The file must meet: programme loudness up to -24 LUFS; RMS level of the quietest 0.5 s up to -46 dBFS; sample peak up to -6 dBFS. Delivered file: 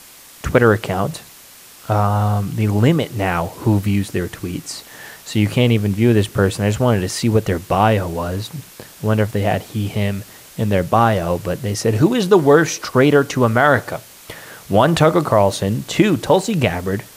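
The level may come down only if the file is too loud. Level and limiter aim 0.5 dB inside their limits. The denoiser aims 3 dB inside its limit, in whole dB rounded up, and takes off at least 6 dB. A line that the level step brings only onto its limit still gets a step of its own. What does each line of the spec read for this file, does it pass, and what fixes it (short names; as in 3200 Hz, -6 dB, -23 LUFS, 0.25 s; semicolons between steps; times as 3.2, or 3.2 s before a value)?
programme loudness -17.5 LUFS: fail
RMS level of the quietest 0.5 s -43 dBFS: fail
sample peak -1.5 dBFS: fail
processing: gain -7 dB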